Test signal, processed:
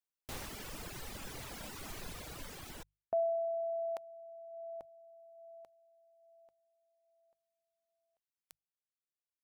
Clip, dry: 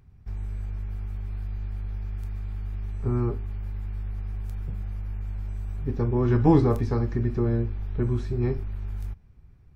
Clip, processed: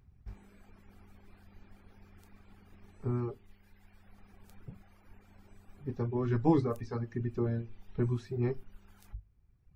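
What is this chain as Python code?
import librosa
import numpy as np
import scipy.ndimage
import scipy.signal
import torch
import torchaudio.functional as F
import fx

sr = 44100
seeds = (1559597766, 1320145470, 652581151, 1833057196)

y = fx.hum_notches(x, sr, base_hz=50, count=3)
y = fx.dereverb_blind(y, sr, rt60_s=1.7)
y = fx.rider(y, sr, range_db=4, speed_s=2.0)
y = y * 10.0 ** (-6.0 / 20.0)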